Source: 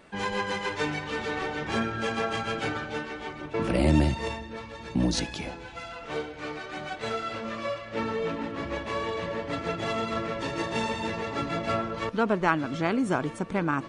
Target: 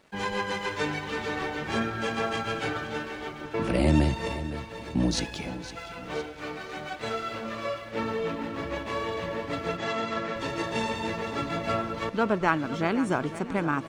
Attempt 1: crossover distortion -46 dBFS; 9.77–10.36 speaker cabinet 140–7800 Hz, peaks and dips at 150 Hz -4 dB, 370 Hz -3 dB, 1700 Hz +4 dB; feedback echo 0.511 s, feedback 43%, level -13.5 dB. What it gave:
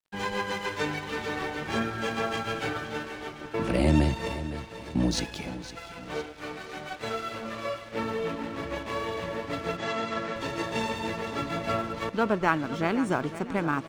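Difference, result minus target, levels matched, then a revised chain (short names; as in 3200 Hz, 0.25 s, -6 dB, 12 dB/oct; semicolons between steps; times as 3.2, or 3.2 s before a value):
crossover distortion: distortion +10 dB
crossover distortion -56 dBFS; 9.77–10.36 speaker cabinet 140–7800 Hz, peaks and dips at 150 Hz -4 dB, 370 Hz -3 dB, 1700 Hz +4 dB; feedback echo 0.511 s, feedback 43%, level -13.5 dB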